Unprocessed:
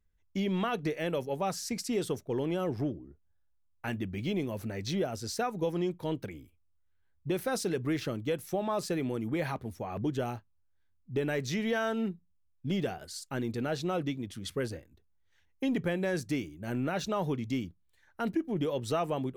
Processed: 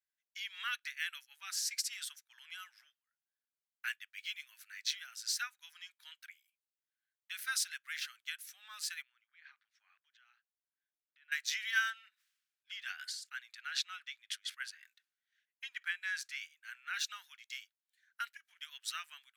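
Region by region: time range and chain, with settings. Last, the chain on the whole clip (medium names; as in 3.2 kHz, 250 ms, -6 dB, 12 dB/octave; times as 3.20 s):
9.02–11.32 s: distance through air 200 m + compression 4:1, threshold -43 dBFS
11.90–16.94 s: treble shelf 6.5 kHz -11.5 dB + decay stretcher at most 53 dB/s
whole clip: elliptic high-pass 1.5 kHz, stop band 70 dB; upward expansion 1.5:1, over -57 dBFS; trim +6.5 dB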